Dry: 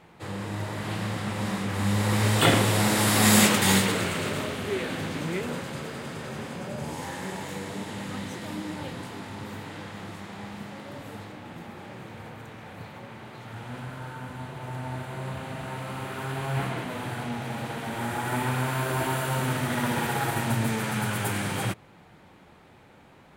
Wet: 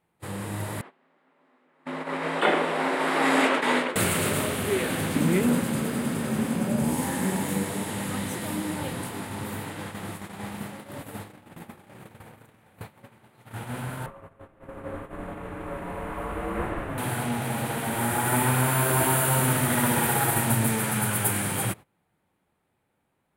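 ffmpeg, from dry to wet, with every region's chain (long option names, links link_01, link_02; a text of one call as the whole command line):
ffmpeg -i in.wav -filter_complex "[0:a]asettb=1/sr,asplit=3[link_01][link_02][link_03];[link_01]atrim=end=0.814[link_04];[link_02]atrim=start=0.81:end=3.96,asetpts=PTS-STARTPTS,afade=type=in:duration=0.004:curve=qsin,afade=type=out:start_time=3.146:duration=0.004:curve=qsin,agate=range=-10dB:threshold=-25dB:ratio=16:release=100:detection=peak,highpass=300,lowpass=2200,afreqshift=56[link_05];[link_03]atrim=start=3.956[link_06];[link_04][link_05]acrossfade=duration=0.004:curve1=hsin:curve2=qsin[link_07];[link_07][link_06]acrossfade=duration=0.004:curve1=qsin:curve2=hsin,asettb=1/sr,asplit=3[link_08][link_09][link_10];[link_08]atrim=end=5.164[link_11];[link_09]atrim=start=5.16:end=7.64,asetpts=PTS-STARTPTS,afade=type=in:duration=0.004:curve=qsin,afade=type=out:start_time=2.476:duration=0.004:curve=qsin,equalizer=frequency=230:width=1.9:gain=11,aeval=exprs='sgn(val(0))*max(abs(val(0))-0.00119,0)':channel_layout=same[link_12];[link_10]atrim=start=7.636[link_13];[link_11][link_12]acrossfade=duration=0.004:curve1=hsin:curve2=qsin[link_14];[link_14][link_13]acrossfade=duration=0.004:curve1=qsin:curve2=hsin,asettb=1/sr,asplit=3[link_15][link_16][link_17];[link_15]atrim=end=14.064[link_18];[link_16]atrim=start=14.06:end=16.98,asetpts=PTS-STARTPTS,afade=type=in:duration=0.004:curve=qsin,afade=type=out:start_time=2.916:duration=0.004:curve=qsin,acrossover=split=250 2600:gain=0.0891 1 0.112[link_19][link_20][link_21];[link_19][link_20][link_21]amix=inputs=3:normalize=0,afreqshift=-350[link_22];[link_17]atrim=start=16.976[link_23];[link_18][link_22]acrossfade=duration=0.004:curve1=hsin:curve2=qsin[link_24];[link_24][link_23]acrossfade=duration=0.004:curve1=qsin:curve2=hsin,agate=range=-20dB:threshold=-39dB:ratio=16:detection=peak,highshelf=frequency=7700:width_type=q:width=1.5:gain=9,dynaudnorm=framelen=300:gausssize=21:maxgain=4dB" out.wav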